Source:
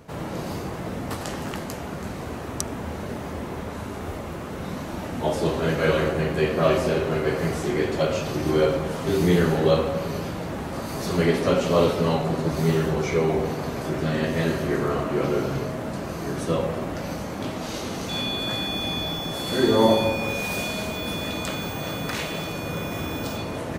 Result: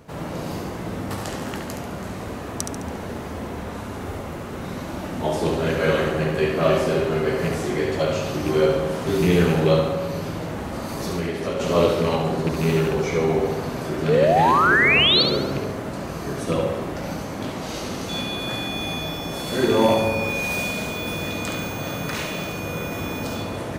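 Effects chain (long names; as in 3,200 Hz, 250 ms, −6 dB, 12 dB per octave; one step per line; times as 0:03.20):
loose part that buzzes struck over −21 dBFS, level −21 dBFS
0:09.92–0:11.60: downward compressor, threshold −24 dBFS, peak gain reduction 9 dB
0:14.08–0:15.23: sound drawn into the spectrogram rise 420–4,600 Hz −18 dBFS
on a send: flutter between parallel walls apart 12 metres, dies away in 0.68 s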